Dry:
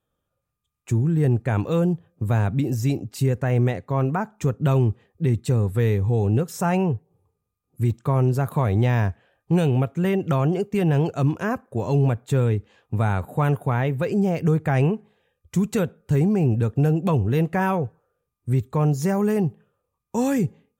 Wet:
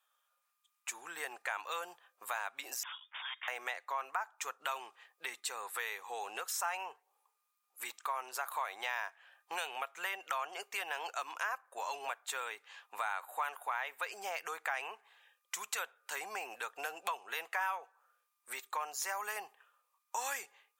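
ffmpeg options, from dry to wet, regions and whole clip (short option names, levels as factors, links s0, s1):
-filter_complex "[0:a]asettb=1/sr,asplit=3[s0][s1][s2];[s0]atrim=end=2.834[s3];[s1]atrim=start=2.83:end=3.48,asetpts=PTS-STARTPTS,afade=t=in:d=0.004:c=qsin,afade=t=out:st=0.646:d=0.004:c=qsin,highpass=1500,aeval=exprs='(mod(59.6*val(0)+1,2)-1)/59.6':c=same,lowpass=f=3100:t=q:w=0.5098,lowpass=f=3100:t=q:w=0.6013,lowpass=f=3100:t=q:w=0.9,lowpass=f=3100:t=q:w=2.563,afreqshift=-3700[s4];[s2]atrim=start=3.476[s5];[s3][s4]acrossfade=d=0.004:c1=hsin:c2=qsin[s6];[s6][s5]acrossfade=d=0.004:c1=qsin:c2=hsin,highpass=f=920:w=0.5412,highpass=f=920:w=1.3066,acompressor=threshold=0.00562:ratio=2.5,volume=2"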